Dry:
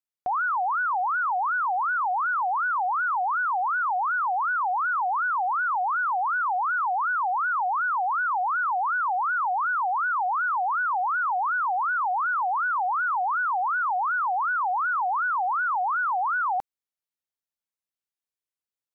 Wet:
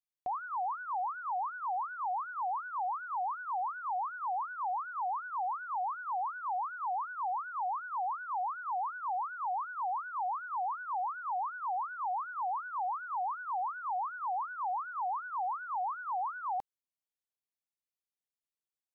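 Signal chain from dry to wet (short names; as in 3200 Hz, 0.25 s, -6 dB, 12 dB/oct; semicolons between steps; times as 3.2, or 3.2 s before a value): bell 1400 Hz -12 dB 0.34 oct; gain -7.5 dB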